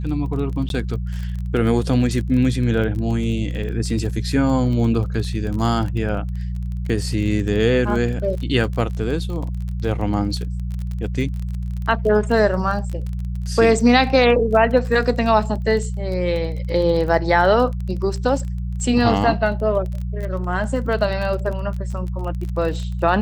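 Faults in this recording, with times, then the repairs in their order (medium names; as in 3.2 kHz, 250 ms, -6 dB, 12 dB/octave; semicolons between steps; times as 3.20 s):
crackle 25 per s -27 dBFS
hum 60 Hz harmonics 3 -25 dBFS
0.69–0.70 s: dropout 12 ms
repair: de-click; de-hum 60 Hz, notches 3; interpolate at 0.69 s, 12 ms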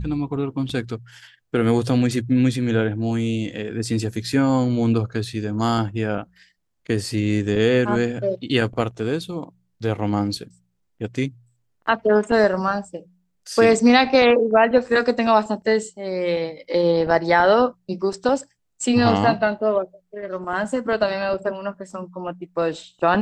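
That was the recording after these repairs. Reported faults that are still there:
nothing left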